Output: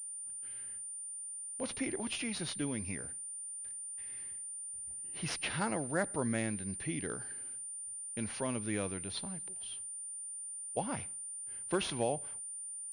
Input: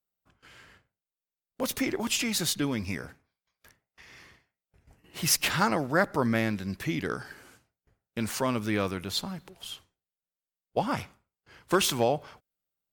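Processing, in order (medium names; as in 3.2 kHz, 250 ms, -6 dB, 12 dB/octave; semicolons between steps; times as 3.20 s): peaking EQ 1.2 kHz -6.5 dB 0.66 oct; class-D stage that switches slowly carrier 9.2 kHz; trim -7.5 dB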